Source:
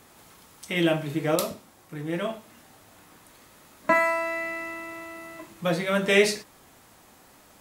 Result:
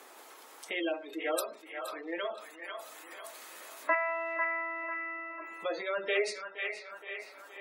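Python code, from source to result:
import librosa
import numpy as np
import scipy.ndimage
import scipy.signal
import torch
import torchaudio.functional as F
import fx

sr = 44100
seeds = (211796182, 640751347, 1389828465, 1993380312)

y = scipy.signal.sosfilt(scipy.signal.butter(4, 350.0, 'highpass', fs=sr, output='sos'), x)
y = fx.echo_feedback(y, sr, ms=469, feedback_pct=44, wet_db=-18)
y = fx.spec_gate(y, sr, threshold_db=-20, keep='strong')
y = fx.high_shelf(y, sr, hz=2000.0, db=11.5, at=(1.13, 3.95))
y = fx.echo_wet_bandpass(y, sr, ms=496, feedback_pct=36, hz=1600.0, wet_db=-6.0)
y = fx.band_squash(y, sr, depth_pct=40)
y = y * librosa.db_to_amplitude(-7.0)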